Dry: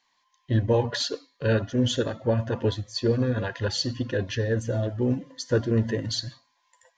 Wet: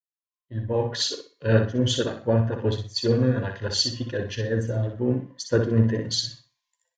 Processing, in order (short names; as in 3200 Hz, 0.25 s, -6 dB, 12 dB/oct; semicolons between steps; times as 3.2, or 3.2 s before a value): opening faded in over 1.15 s; on a send: feedback echo 62 ms, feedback 30%, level -6 dB; on the sum: three-band expander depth 70%